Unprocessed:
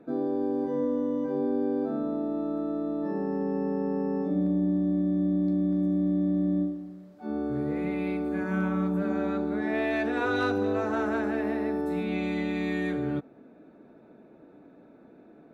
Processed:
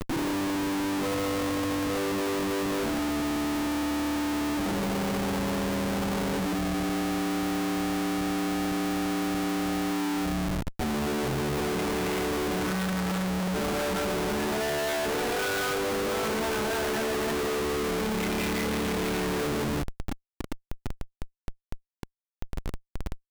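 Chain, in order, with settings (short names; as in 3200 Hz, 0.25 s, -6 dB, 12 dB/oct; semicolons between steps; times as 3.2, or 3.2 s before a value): plain phase-vocoder stretch 1.5×; Schmitt trigger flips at -47 dBFS; gain +3 dB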